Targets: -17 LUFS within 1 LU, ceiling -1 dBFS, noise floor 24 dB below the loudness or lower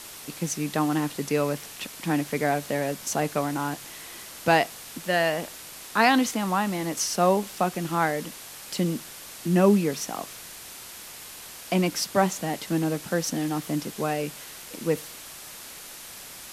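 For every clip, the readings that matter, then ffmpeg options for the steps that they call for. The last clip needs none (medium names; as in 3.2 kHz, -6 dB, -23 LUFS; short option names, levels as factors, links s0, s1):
noise floor -43 dBFS; noise floor target -50 dBFS; loudness -26.0 LUFS; peak level -5.5 dBFS; loudness target -17.0 LUFS
-> -af "afftdn=nr=7:nf=-43"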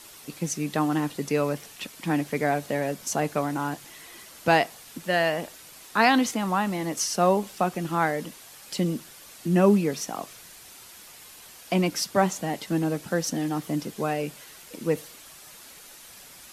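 noise floor -48 dBFS; noise floor target -51 dBFS
-> -af "afftdn=nr=6:nf=-48"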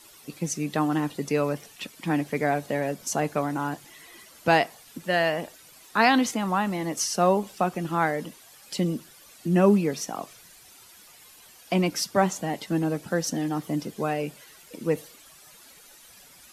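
noise floor -52 dBFS; loudness -26.5 LUFS; peak level -5.5 dBFS; loudness target -17.0 LUFS
-> -af "volume=2.99,alimiter=limit=0.891:level=0:latency=1"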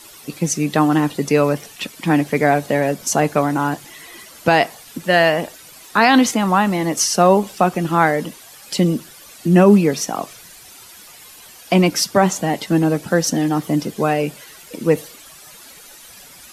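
loudness -17.5 LUFS; peak level -1.0 dBFS; noise floor -42 dBFS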